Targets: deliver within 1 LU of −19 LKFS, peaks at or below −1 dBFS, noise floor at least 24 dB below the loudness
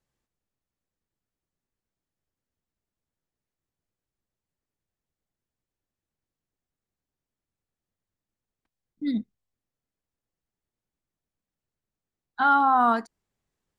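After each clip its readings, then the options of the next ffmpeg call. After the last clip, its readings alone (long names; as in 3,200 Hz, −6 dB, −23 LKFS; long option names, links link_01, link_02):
integrated loudness −23.0 LKFS; sample peak −10.0 dBFS; target loudness −19.0 LKFS
→ -af "volume=4dB"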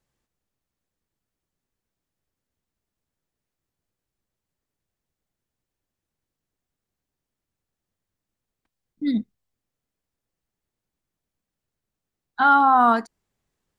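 integrated loudness −19.0 LKFS; sample peak −6.0 dBFS; background noise floor −86 dBFS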